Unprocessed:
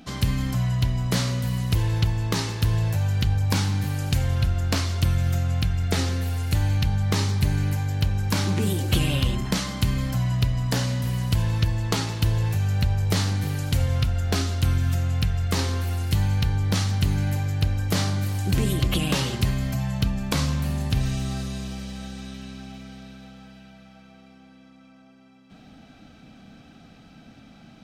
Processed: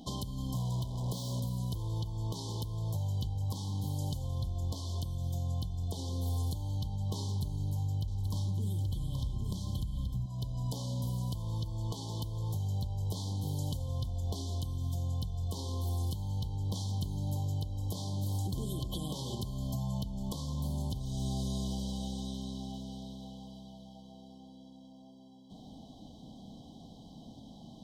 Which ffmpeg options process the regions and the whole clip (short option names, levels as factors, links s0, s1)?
-filter_complex "[0:a]asettb=1/sr,asplit=3[s0][s1][s2];[s0]atrim=end=0.554[s3];[s1]atrim=start=0.55:end=1.4,asetpts=PTS-STARTPTS,afade=t=in:d=0.004:c=qsin,afade=t=out:st=0.846:d=0.004:c=qsin,highpass=44,acrusher=bits=4:mix=0:aa=0.5[s4];[s2]atrim=start=1.396[s5];[s3][s4]acrossfade=d=0.004:c1=hsin:c2=qsin[s6];[s6][s5]acrossfade=d=0.004:c1=qsin:c2=hsin,asettb=1/sr,asplit=3[s7][s8][s9];[s7]atrim=end=7.254[s10];[s8]atrim=start=7.25:end=10.26,asetpts=PTS-STARTPTS,afade=t=in:d=0.004:c=qsin,afade=t=out:st=3.006:d=0.004:c=qsin,asubboost=boost=6.5:cutoff=180,aecho=1:1:827:0.531,atrim=end_sample=132741[s11];[s9]atrim=start=10.256[s12];[s10][s11]acrossfade=d=0.004:c1=hsin:c2=qsin[s13];[s13][s12]acrossfade=d=0.004:c1=qsin:c2=hsin,afftfilt=real='re*(1-between(b*sr/4096,1100,3000))':imag='im*(1-between(b*sr/4096,1100,3000))':win_size=4096:overlap=0.75,acompressor=threshold=0.0398:ratio=6,alimiter=level_in=1.06:limit=0.0631:level=0:latency=1:release=374,volume=0.944,volume=0.841"